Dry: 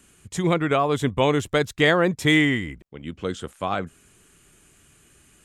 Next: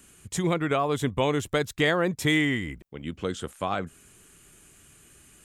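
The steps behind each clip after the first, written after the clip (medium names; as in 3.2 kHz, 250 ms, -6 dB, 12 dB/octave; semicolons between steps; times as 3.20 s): treble shelf 11 kHz +8 dB; compression 1.5:1, threshold -28 dBFS, peak gain reduction 5.5 dB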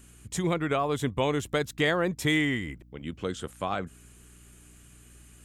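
hum 60 Hz, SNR 24 dB; trim -2 dB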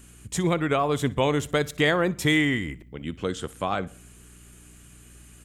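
feedback delay 61 ms, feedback 40%, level -22 dB; on a send at -23 dB: reverberation RT60 0.70 s, pre-delay 6 ms; on the sum: trim +3.5 dB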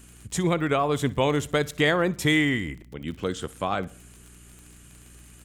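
crackle 38 per s -37 dBFS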